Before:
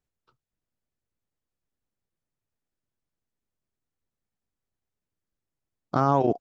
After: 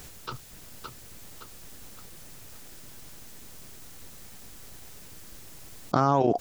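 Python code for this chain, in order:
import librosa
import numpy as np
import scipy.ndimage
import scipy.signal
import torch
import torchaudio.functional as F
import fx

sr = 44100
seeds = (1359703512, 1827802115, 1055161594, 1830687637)

y = fx.high_shelf(x, sr, hz=3100.0, db=7.5)
y = fx.echo_feedback(y, sr, ms=566, feedback_pct=43, wet_db=-13.5)
y = fx.env_flatten(y, sr, amount_pct=70)
y = F.gain(torch.from_numpy(y), -2.0).numpy()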